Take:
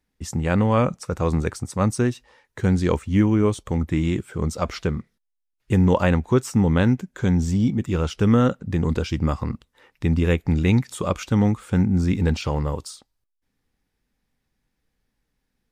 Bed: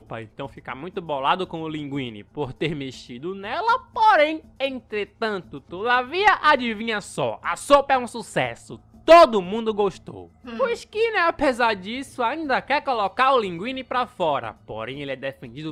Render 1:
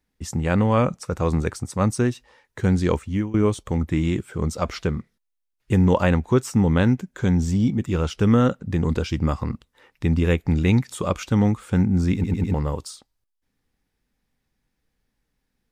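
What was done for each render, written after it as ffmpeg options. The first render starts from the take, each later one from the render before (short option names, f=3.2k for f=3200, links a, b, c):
-filter_complex "[0:a]asplit=6[a][b][c][d][e][f];[a]atrim=end=3.34,asetpts=PTS-STARTPTS,afade=t=out:st=2.84:d=0.5:c=qsin:silence=0.1[g];[b]atrim=start=3.34:end=12.242,asetpts=PTS-STARTPTS,afade=t=in:d=0.004:c=hsin:silence=0.1[h];[c]atrim=start=12.138:end=12.242[i];[d]atrim=start=12.138:end=12.242[j];[e]atrim=start=12.138:end=12.242[k];[f]atrim=start=12.538[l];[g][h]concat=n=2:v=0:a=1[m];[m][i]acrossfade=d=0.004:c1=hsin:c2=hsin[n];[n][j]acrossfade=d=0.004:c1=hsin:c2=hsin[o];[o][k]acrossfade=d=0.004:c1=hsin:c2=hsin[p];[p][l]acrossfade=d=0.004:c1=hsin:c2=hsin"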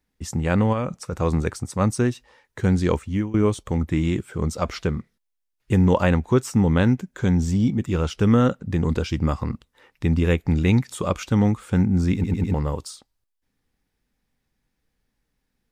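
-filter_complex "[0:a]asplit=3[a][b][c];[a]afade=t=out:st=0.72:d=0.02[d];[b]acompressor=threshold=-24dB:ratio=2.5:attack=3.2:release=140:knee=1:detection=peak,afade=t=in:st=0.72:d=0.02,afade=t=out:st=1.12:d=0.02[e];[c]afade=t=in:st=1.12:d=0.02[f];[d][e][f]amix=inputs=3:normalize=0"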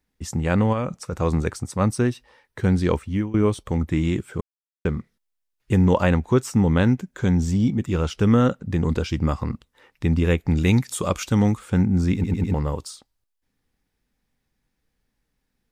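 -filter_complex "[0:a]asettb=1/sr,asplit=3[a][b][c];[a]atrim=end=1.744[d];[b]atrim=start=1.74:end=3.68,asetpts=PTS-STARTPTS,afade=t=in:d=0.004:c=qsin,afade=t=out:st=1.936:d=0.004:c=qsin,equalizer=f=6.9k:t=o:w=0.24:g=-7.5[e];[c]atrim=start=3.676[f];[d][e]acrossfade=d=0.004:c1=hsin:c2=qsin[g];[g][f]acrossfade=d=0.004:c1=qsin:c2=hsin,asettb=1/sr,asplit=3[h][i][j];[h]atrim=end=10.574[k];[i]atrim=start=10.57:end=11.59,asetpts=PTS-STARTPTS,afade=t=in:d=0.004:c=qsin,afade=t=out:st=1.016:d=0.004:c=qsin,highshelf=f=5.1k:g=9[l];[j]atrim=start=11.586[m];[k][l]acrossfade=d=0.004:c1=hsin:c2=qsin[n];[n][m]acrossfade=d=0.004:c1=qsin:c2=hsin,asplit=3[o][p][q];[o]atrim=end=4.41,asetpts=PTS-STARTPTS,afade=t=out:st=4.406:d=0.004:c=hsin[r];[p]atrim=start=4.41:end=4.85,asetpts=PTS-STARTPTS,volume=0[s];[q]atrim=start=4.85,asetpts=PTS-STARTPTS,afade=t=in:d=0.004:c=hsin[t];[r][s][t]concat=n=3:v=0:a=1"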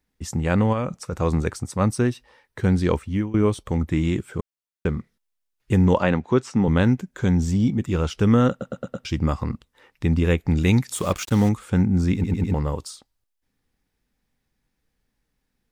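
-filter_complex "[0:a]asettb=1/sr,asplit=3[a][b][c];[a]atrim=end=5.994[d];[b]atrim=start=5.99:end=6.68,asetpts=PTS-STARTPTS,afade=t=in:d=0.004:c=qsin,afade=t=out:st=0.686:d=0.004:c=qsin,highpass=140,lowpass=5.1k[e];[c]atrim=start=6.676[f];[d][e]acrossfade=d=0.004:c1=hsin:c2=qsin[g];[g][f]acrossfade=d=0.004:c1=qsin:c2=hsin,asettb=1/sr,asplit=3[h][i][j];[h]atrim=end=10.954[k];[i]atrim=start=10.95:end=11.49,asetpts=PTS-STARTPTS,afade=t=in:d=0.004:c=qsin,afade=t=out:st=0.536:d=0.004:c=qsin,acrusher=bits=5:mix=0:aa=0.5[l];[j]atrim=start=11.486[m];[k][l]acrossfade=d=0.004:c1=hsin:c2=qsin[n];[n][m]acrossfade=d=0.004:c1=qsin:c2=hsin,asplit=6[o][p][q][r][s][t];[o]atrim=end=8.612[u];[p]atrim=start=8.498:end=8.612[v];[q]atrim=start=8.498:end=8.612[w];[r]atrim=start=8.498:end=8.612[x];[s]atrim=start=8.498:end=8.612[y];[t]atrim=start=9.048[z];[u][v]acrossfade=d=0.004:c1=hsin:c2=hsin[aa];[aa][w]acrossfade=d=0.004:c1=hsin:c2=hsin[ab];[ab][x]acrossfade=d=0.004:c1=hsin:c2=hsin[ac];[ac][y]acrossfade=d=0.004:c1=hsin:c2=hsin[ad];[ad][z]acrossfade=d=0.004:c1=hsin:c2=hsin"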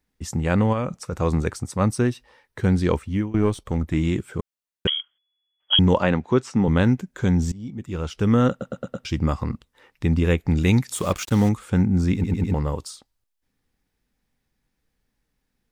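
-filter_complex "[0:a]asettb=1/sr,asplit=3[a][b][c];[a]atrim=end=3.314[d];[b]atrim=start=3.31:end=3.95,asetpts=PTS-STARTPTS,afade=t=in:d=0.004:c=qsin,afade=t=out:st=0.636:d=0.004:c=qsin,aeval=exprs='if(lt(val(0),0),0.708*val(0),val(0))':c=same[e];[c]atrim=start=3.946[f];[d][e]acrossfade=d=0.004:c1=hsin:c2=qsin[g];[g][f]acrossfade=d=0.004:c1=qsin:c2=hsin,asettb=1/sr,asplit=3[h][i][j];[h]atrim=end=4.874[k];[i]atrim=start=4.87:end=5.79,asetpts=PTS-STARTPTS,afade=t=in:d=0.004:c=qsin,afade=t=out:st=0.916:d=0.004:c=qsin,lowpass=f=2.9k:t=q:w=0.5098,lowpass=f=2.9k:t=q:w=0.6013,lowpass=f=2.9k:t=q:w=0.9,lowpass=f=2.9k:t=q:w=2.563,afreqshift=-3400[l];[j]atrim=start=5.786[m];[k][l]acrossfade=d=0.004:c1=hsin:c2=qsin[n];[n][m]acrossfade=d=0.004:c1=qsin:c2=hsin,asplit=2[o][p];[o]atrim=end=7.52,asetpts=PTS-STARTPTS,afade=t=out:st=7.516:d=0.004:c=hsin:silence=0.0749894[q];[p]atrim=start=7.52,asetpts=PTS-STARTPTS,afade=t=in:d=0.95:silence=0.0749894[r];[q][r]concat=n=2:v=0:a=1"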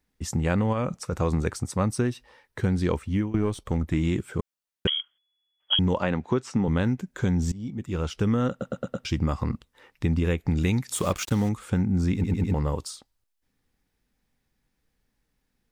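-af "acompressor=threshold=-20dB:ratio=6"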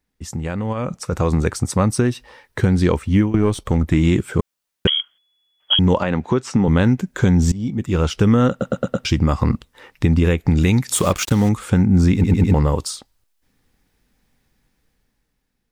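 -af "alimiter=limit=-16dB:level=0:latency=1:release=250,dynaudnorm=f=240:g=9:m=10.5dB"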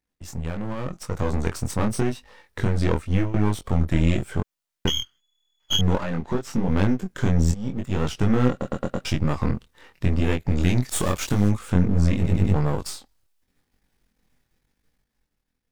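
-af "aeval=exprs='if(lt(val(0),0),0.251*val(0),val(0))':c=same,flanger=delay=20:depth=4.6:speed=0.87"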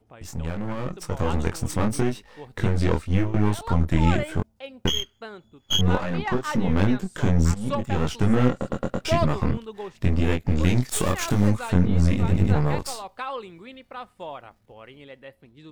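-filter_complex "[1:a]volume=-14dB[a];[0:a][a]amix=inputs=2:normalize=0"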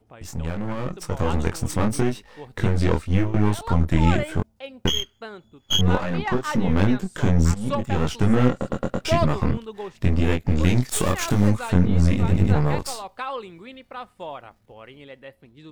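-af "volume=1.5dB"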